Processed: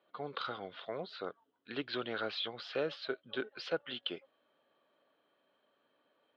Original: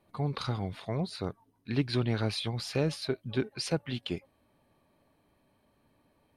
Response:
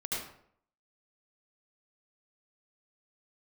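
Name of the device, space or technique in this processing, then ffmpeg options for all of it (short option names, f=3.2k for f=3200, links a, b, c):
phone earpiece: -af "highpass=430,equalizer=f=510:t=q:w=4:g=4,equalizer=f=890:t=q:w=4:g=-5,equalizer=f=1.4k:t=q:w=4:g=8,equalizer=f=2.3k:t=q:w=4:g=-5,equalizer=f=3.2k:t=q:w=4:g=8,lowpass=f=3.8k:w=0.5412,lowpass=f=3.8k:w=1.3066,volume=-3dB"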